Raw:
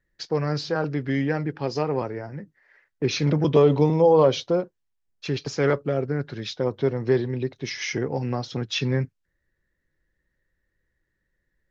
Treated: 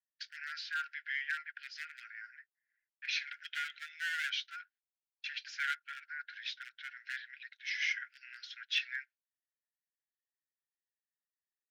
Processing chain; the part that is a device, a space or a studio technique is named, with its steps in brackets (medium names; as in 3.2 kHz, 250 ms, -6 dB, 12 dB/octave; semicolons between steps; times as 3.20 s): walkie-talkie (band-pass 450–2900 Hz; hard clipper -20 dBFS, distortion -10 dB; gate -49 dBFS, range -25 dB); Chebyshev high-pass 1.4 kHz, order 10